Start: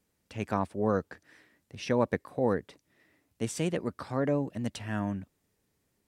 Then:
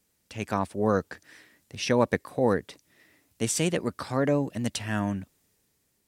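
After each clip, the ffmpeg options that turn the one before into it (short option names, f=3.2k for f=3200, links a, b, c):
-af "highshelf=f=2.7k:g=8.5,dynaudnorm=f=120:g=11:m=3.5dB"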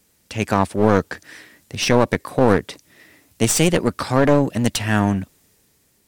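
-af "aeval=exprs='clip(val(0),-1,0.0299)':c=same,alimiter=level_in=12dB:limit=-1dB:release=50:level=0:latency=1,volume=-1dB"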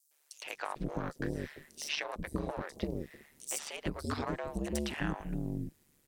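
-filter_complex "[0:a]acompressor=threshold=-22dB:ratio=5,aeval=exprs='val(0)*sin(2*PI*73*n/s)':c=same,acrossover=split=520|5200[a][b][c];[b]adelay=110[d];[a]adelay=450[e];[e][d][c]amix=inputs=3:normalize=0,volume=-5.5dB"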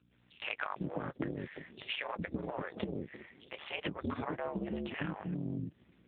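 -af "aeval=exprs='val(0)+0.000282*(sin(2*PI*60*n/s)+sin(2*PI*2*60*n/s)/2+sin(2*PI*3*60*n/s)/3+sin(2*PI*4*60*n/s)/4+sin(2*PI*5*60*n/s)/5)':c=same,acompressor=threshold=-41dB:ratio=16,volume=10.5dB" -ar 8000 -c:a libopencore_amrnb -b:a 5900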